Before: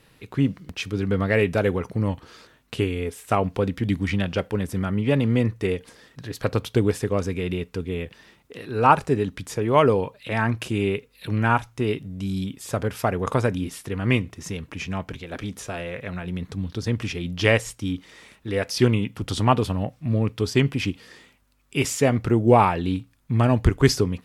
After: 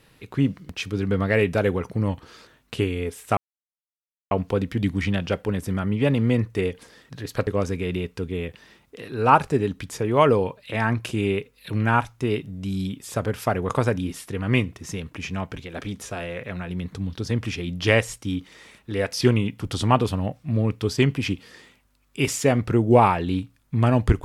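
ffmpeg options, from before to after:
-filter_complex "[0:a]asplit=3[s0][s1][s2];[s0]atrim=end=3.37,asetpts=PTS-STARTPTS,afade=t=out:st=3.366:d=0.004:c=hsin,apad=pad_dur=0.94[s3];[s1]atrim=start=3.37:end=6.532,asetpts=PTS-STARTPTS,afade=t=in:d=0.004:c=hsin[s4];[s2]atrim=start=7.038[s5];[s3][s4]concat=n=2:v=0:a=1[s6];[s6][s5]acrossfade=d=0.004:c1=hsin:c2=hsin"

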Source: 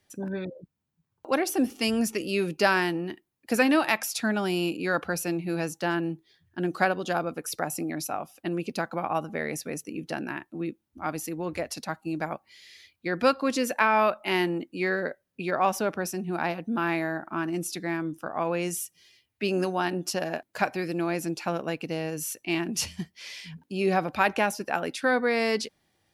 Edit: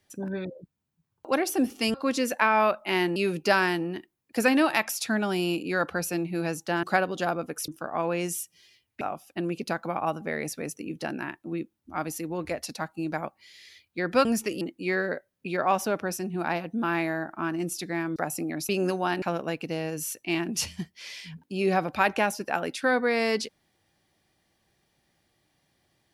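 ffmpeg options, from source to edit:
-filter_complex "[0:a]asplit=11[s0][s1][s2][s3][s4][s5][s6][s7][s8][s9][s10];[s0]atrim=end=1.942[s11];[s1]atrim=start=13.328:end=14.552[s12];[s2]atrim=start=2.298:end=5.972[s13];[s3]atrim=start=6.708:end=7.562[s14];[s4]atrim=start=18.098:end=19.432[s15];[s5]atrim=start=8.088:end=13.332[s16];[s6]atrim=start=1.938:end=2.302[s17];[s7]atrim=start=14.548:end=18.102[s18];[s8]atrim=start=7.558:end=8.092[s19];[s9]atrim=start=19.428:end=19.962[s20];[s10]atrim=start=21.418[s21];[s11][s12]acrossfade=d=0.004:c1=hsin:c2=hsin[s22];[s22][s13]acrossfade=d=0.004:c1=hsin:c2=hsin[s23];[s23][s14]acrossfade=d=0.004:c1=hsin:c2=hsin[s24];[s24][s15]acrossfade=d=0.004:c1=hsin:c2=hsin[s25];[s25][s16]acrossfade=d=0.004:c1=hsin:c2=hsin[s26];[s26][s17]acrossfade=d=0.004:c1=hsin:c2=hsin[s27];[s27][s18]acrossfade=d=0.004:c1=hsin:c2=hsin[s28];[s28][s19]acrossfade=d=0.004:c1=hsin:c2=hsin[s29];[s29][s20]acrossfade=d=0.004:c1=hsin:c2=hsin[s30];[s30][s21]acrossfade=d=0.004:c1=hsin:c2=hsin"

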